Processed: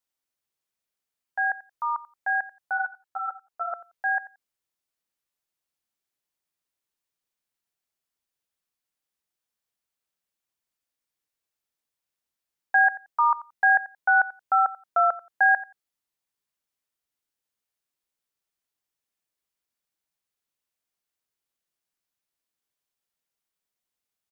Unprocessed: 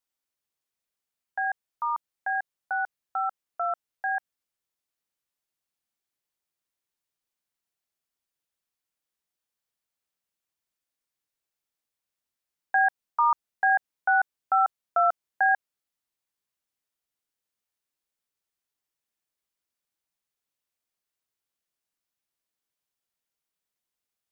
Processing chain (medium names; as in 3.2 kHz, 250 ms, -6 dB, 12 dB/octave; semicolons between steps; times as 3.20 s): dynamic bell 1.7 kHz, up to +5 dB, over -35 dBFS, Q 2; on a send: feedback delay 88 ms, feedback 15%, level -17.5 dB; 2.77–3.73 s: on the sum: three-phase chorus